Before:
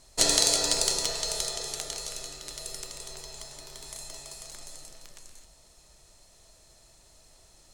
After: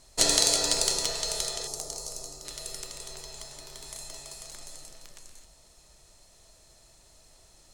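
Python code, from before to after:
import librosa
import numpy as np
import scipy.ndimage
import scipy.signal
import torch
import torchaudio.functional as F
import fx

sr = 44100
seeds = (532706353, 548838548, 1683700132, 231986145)

y = fx.band_shelf(x, sr, hz=2300.0, db=-12.5, octaves=1.7, at=(1.67, 2.45))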